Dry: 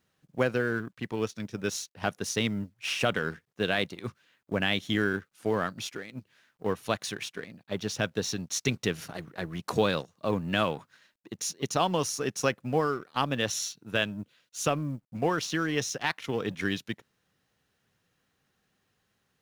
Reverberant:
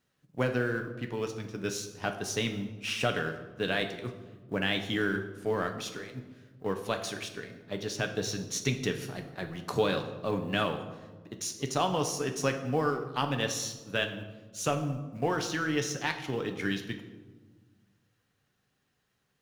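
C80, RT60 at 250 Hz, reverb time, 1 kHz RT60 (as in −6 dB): 11.5 dB, 2.0 s, 1.4 s, 1.2 s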